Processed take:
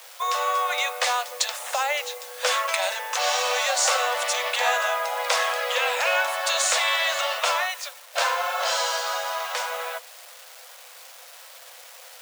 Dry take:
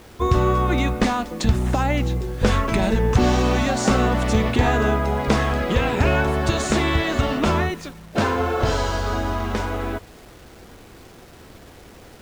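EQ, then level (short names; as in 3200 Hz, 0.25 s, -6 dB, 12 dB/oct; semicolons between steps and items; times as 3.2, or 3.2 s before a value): Chebyshev high-pass 490 Hz, order 10; tilt +3 dB/oct; 0.0 dB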